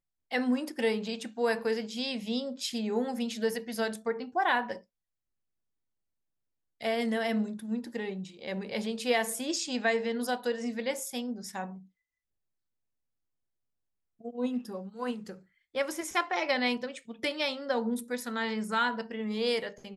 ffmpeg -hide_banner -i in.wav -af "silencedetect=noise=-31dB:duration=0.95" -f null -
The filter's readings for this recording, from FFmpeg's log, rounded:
silence_start: 4.73
silence_end: 6.82 | silence_duration: 2.10
silence_start: 11.64
silence_end: 14.26 | silence_duration: 2.62